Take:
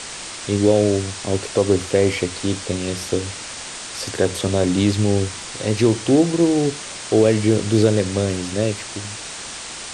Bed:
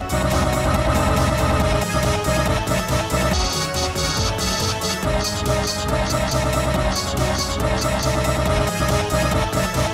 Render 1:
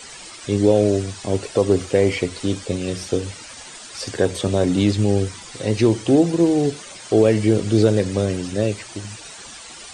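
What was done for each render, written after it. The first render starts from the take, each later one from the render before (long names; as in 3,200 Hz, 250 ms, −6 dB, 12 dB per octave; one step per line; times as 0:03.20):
broadband denoise 12 dB, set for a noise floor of −33 dBFS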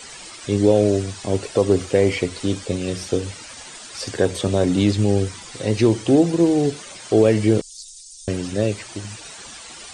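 0:07.61–0:08.28: inverse Chebyshev band-stop filter 120–1,300 Hz, stop band 70 dB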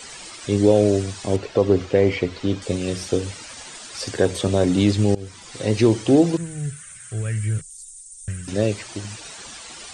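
0:01.36–0:02.62: high-frequency loss of the air 130 metres
0:05.15–0:05.62: fade in, from −20.5 dB
0:06.37–0:08.48: drawn EQ curve 150 Hz 0 dB, 260 Hz −24 dB, 910 Hz −22 dB, 1,500 Hz −2 dB, 4,700 Hz −18 dB, 8,600 Hz +4 dB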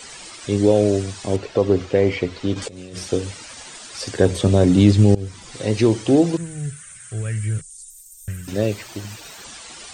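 0:02.54–0:02.99: compressor whose output falls as the input rises −34 dBFS
0:04.20–0:05.55: low-shelf EQ 280 Hz +8 dB
0:07.90–0:09.44: linearly interpolated sample-rate reduction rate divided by 2×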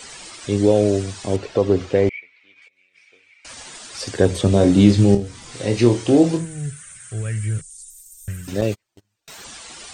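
0:02.09–0:03.45: resonant band-pass 2,300 Hz, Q 15
0:04.50–0:06.45: flutter between parallel walls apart 4.3 metres, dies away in 0.22 s
0:08.61–0:09.28: noise gate −26 dBFS, range −40 dB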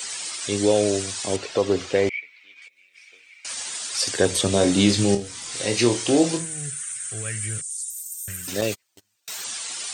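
spectral tilt +3 dB per octave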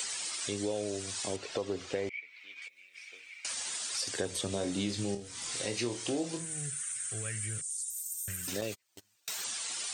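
downward compressor 3 to 1, threshold −36 dBFS, peak gain reduction 17 dB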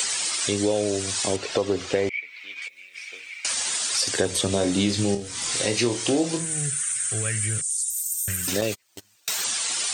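level +11 dB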